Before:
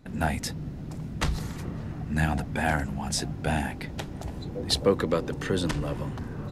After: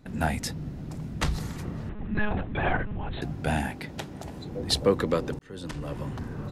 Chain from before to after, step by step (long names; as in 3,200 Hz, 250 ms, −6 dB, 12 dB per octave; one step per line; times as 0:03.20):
0:01.89–0:03.22: one-pitch LPC vocoder at 8 kHz 210 Hz
0:03.72–0:04.51: high-pass filter 140 Hz 6 dB per octave
0:05.39–0:06.15: fade in